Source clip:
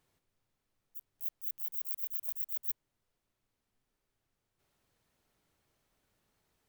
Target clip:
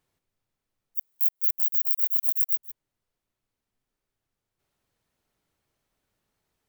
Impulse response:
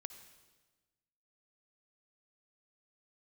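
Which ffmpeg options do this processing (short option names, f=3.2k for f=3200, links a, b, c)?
-filter_complex "[0:a]asplit=3[a][b][c];[a]afade=t=out:st=0.97:d=0.02[d];[b]aemphasis=mode=production:type=bsi,afade=t=in:st=0.97:d=0.02,afade=t=out:st=2.55:d=0.02[e];[c]afade=t=in:st=2.55:d=0.02[f];[d][e][f]amix=inputs=3:normalize=0,acompressor=threshold=-19dB:ratio=3,volume=-1.5dB"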